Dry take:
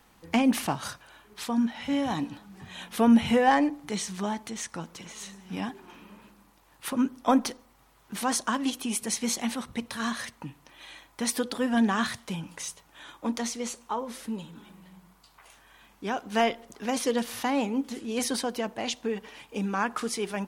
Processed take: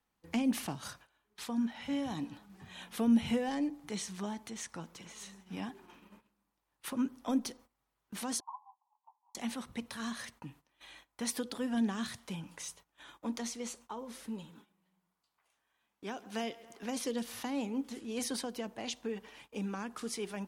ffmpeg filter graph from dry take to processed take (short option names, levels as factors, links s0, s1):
-filter_complex "[0:a]asettb=1/sr,asplit=3[s0][s1][s2];[s0]atrim=end=8.404[s3];[s1]atrim=start=8.4:end=9.35,asetpts=PTS-STARTPTS,afade=t=in:d=0.004:c=qsin,afade=t=out:st=0.946:d=0.004:c=qsin,asuperpass=centerf=910:order=8:qfactor=3.3,asplit=2[s4][s5];[s5]adelay=13,volume=0.282[s6];[s4][s6]amix=inputs=2:normalize=0,atrim=end_sample=41895[s7];[s2]atrim=start=9.346[s8];[s3][s7]acrossfade=d=0.004:c1=hsin:c2=qsin[s9];[s9][s8]acrossfade=d=0.004:c1=qsin:c2=hsin,asettb=1/sr,asplit=3[s10][s11][s12];[s10]atrim=end=14.504[s13];[s11]atrim=start=14.5:end=16.83,asetpts=PTS-STARTPTS,afade=t=in:d=0.004:c=qsin,afade=t=out:st=2.326:d=0.004:c=qsin,highpass=f=180:p=1,aecho=1:1:137|274|411:0.0841|0.037|0.0163,atrim=end_sample=102753[s14];[s12]atrim=start=16.826[s15];[s13][s14]acrossfade=d=0.004:c1=hsin:c2=qsin[s16];[s16][s15]acrossfade=d=0.004:c1=qsin:c2=hsin,agate=range=0.158:threshold=0.00355:ratio=16:detection=peak,acrossover=split=450|3000[s17][s18][s19];[s18]acompressor=threshold=0.0178:ratio=6[s20];[s17][s20][s19]amix=inputs=3:normalize=0,volume=0.447"